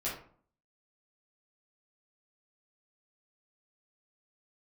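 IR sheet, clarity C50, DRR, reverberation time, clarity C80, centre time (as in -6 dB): 4.5 dB, -9.0 dB, 0.50 s, 9.5 dB, 36 ms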